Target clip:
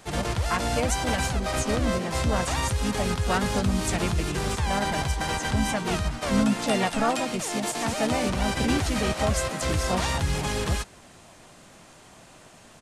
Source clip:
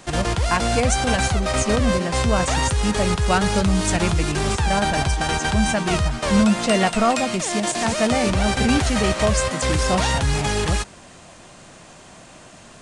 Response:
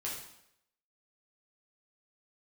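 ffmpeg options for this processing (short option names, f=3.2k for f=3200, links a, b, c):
-filter_complex "[0:a]asplit=3[a][b][c];[b]asetrate=29433,aresample=44100,atempo=1.49831,volume=-15dB[d];[c]asetrate=55563,aresample=44100,atempo=0.793701,volume=-6dB[e];[a][d][e]amix=inputs=3:normalize=0,volume=-7dB"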